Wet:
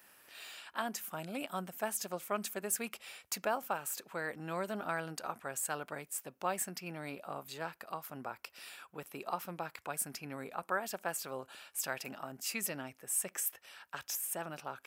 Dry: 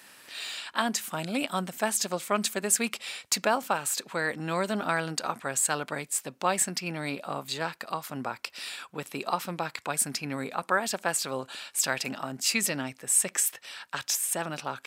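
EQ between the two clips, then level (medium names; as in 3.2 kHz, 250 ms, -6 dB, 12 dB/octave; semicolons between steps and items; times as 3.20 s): graphic EQ 125/250/500/1000/2000/4000/8000 Hz -9/-9/-5/-6/-7/-12/-10 dB; 0.0 dB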